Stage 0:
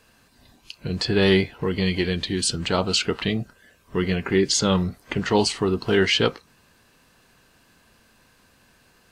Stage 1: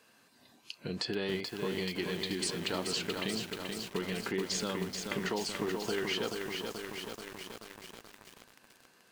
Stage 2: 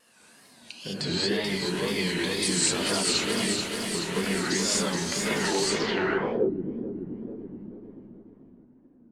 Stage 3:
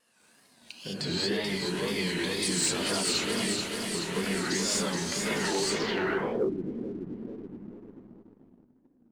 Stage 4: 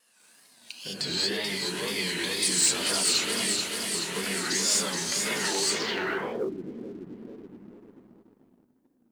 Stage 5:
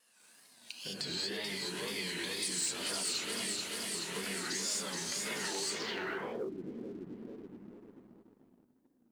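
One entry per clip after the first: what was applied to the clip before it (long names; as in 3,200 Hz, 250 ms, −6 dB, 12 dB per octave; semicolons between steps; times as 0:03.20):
high-pass filter 200 Hz 12 dB per octave; downward compressor 6 to 1, threshold −27 dBFS, peak gain reduction 12.5 dB; feedback echo at a low word length 432 ms, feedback 80%, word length 7 bits, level −4 dB; level −5 dB
reverb whose tail is shaped and stops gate 240 ms rising, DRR −7.5 dB; low-pass filter sweep 9,700 Hz → 280 Hz, 0:05.64–0:06.54; tape wow and flutter 120 cents
leveller curve on the samples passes 1; level −6 dB
spectral tilt +2 dB per octave
downward compressor 2 to 1, threshold −35 dBFS, peak gain reduction 9 dB; level −3.5 dB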